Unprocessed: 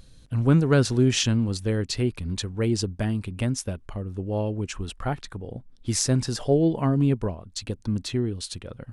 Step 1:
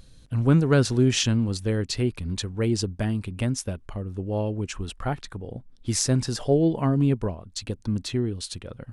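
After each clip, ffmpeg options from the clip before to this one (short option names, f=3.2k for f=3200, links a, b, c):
-af anull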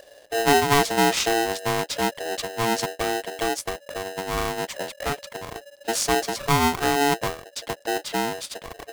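-af "aeval=exprs='val(0)*sgn(sin(2*PI*570*n/s))':c=same"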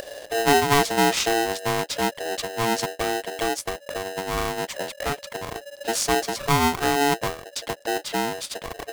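-af "acompressor=mode=upward:threshold=-26dB:ratio=2.5"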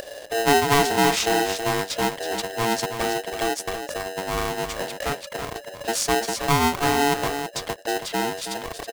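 -af "aecho=1:1:324:0.376"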